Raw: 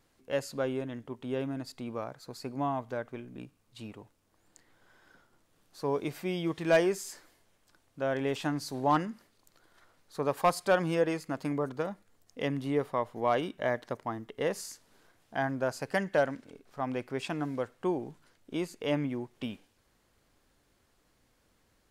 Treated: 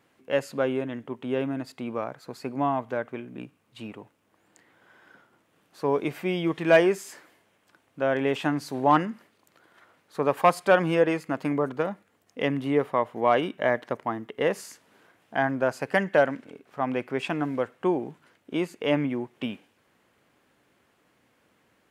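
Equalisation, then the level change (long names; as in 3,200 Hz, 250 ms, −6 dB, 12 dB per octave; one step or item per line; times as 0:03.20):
high-pass filter 140 Hz 12 dB per octave
high shelf with overshoot 3,500 Hz −6 dB, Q 1.5
+6.0 dB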